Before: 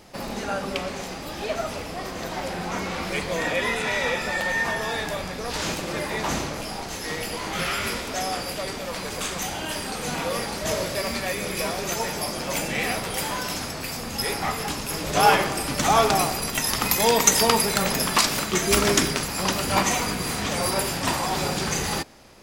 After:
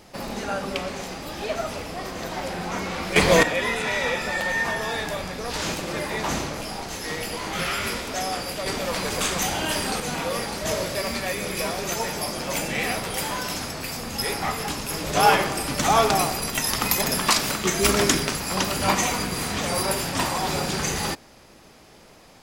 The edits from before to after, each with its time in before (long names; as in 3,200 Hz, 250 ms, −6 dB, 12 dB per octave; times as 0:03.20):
0:03.16–0:03.43: clip gain +11 dB
0:08.66–0:10.00: clip gain +4.5 dB
0:17.02–0:17.90: remove